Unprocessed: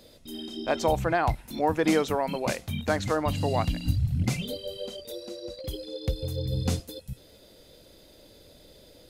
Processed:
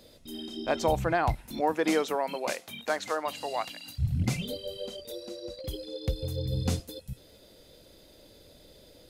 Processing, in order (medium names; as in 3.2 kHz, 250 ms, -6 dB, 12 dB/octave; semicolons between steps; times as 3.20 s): 1.60–3.98 s: high-pass 240 Hz -> 780 Hz 12 dB/octave; trim -1.5 dB